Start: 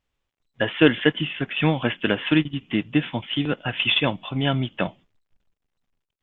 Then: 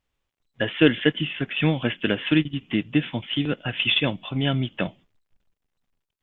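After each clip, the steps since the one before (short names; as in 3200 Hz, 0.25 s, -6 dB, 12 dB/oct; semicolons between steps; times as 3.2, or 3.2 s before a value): dynamic EQ 960 Hz, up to -7 dB, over -38 dBFS, Q 1.2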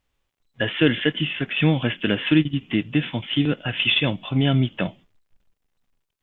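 harmonic-percussive split percussive -5 dB; in parallel at -0.5 dB: limiter -17 dBFS, peak gain reduction 9.5 dB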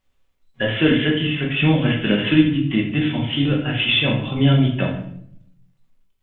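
shoebox room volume 130 m³, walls mixed, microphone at 1.1 m; gain -1.5 dB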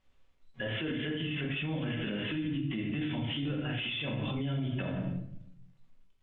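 compressor 6:1, threshold -25 dBFS, peak gain reduction 16 dB; limiter -26 dBFS, peak gain reduction 11 dB; air absorption 61 m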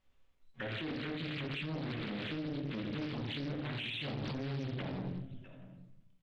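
in parallel at -10.5 dB: soft clip -35 dBFS, distortion -11 dB; on the sum: echo 0.655 s -15 dB; Doppler distortion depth 0.76 ms; gain -6 dB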